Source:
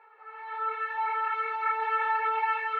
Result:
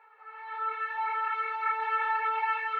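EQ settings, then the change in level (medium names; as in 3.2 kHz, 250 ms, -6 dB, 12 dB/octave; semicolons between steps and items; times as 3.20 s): bass shelf 400 Hz -11 dB; 0.0 dB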